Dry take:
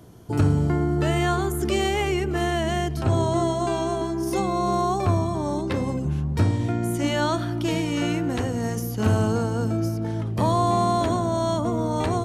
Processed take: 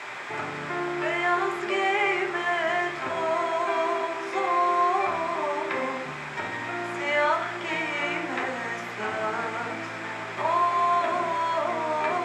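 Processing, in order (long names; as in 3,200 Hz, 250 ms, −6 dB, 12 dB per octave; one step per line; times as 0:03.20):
brickwall limiter −15 dBFS, peak gain reduction 7 dB
background noise pink −35 dBFS
band-pass filter 620–2,000 Hz
convolution reverb RT60 0.50 s, pre-delay 3 ms, DRR 2 dB
level +6 dB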